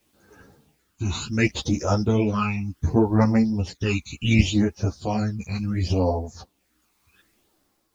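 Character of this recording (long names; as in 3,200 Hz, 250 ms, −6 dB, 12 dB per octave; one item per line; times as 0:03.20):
phaser sweep stages 12, 0.68 Hz, lowest notch 530–3,100 Hz
a quantiser's noise floor 12 bits, dither triangular
tremolo triangle 0.73 Hz, depth 60%
a shimmering, thickened sound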